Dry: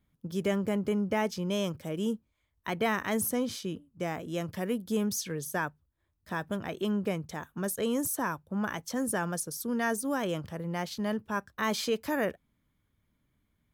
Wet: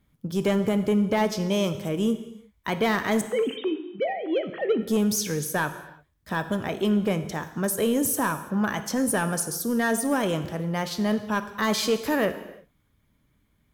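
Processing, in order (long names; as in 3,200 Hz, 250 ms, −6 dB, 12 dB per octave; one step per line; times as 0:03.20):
0:03.21–0:04.82: three sine waves on the formant tracks
sine wavefolder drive 3 dB, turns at −17 dBFS
reverb whose tail is shaped and stops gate 370 ms falling, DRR 9 dB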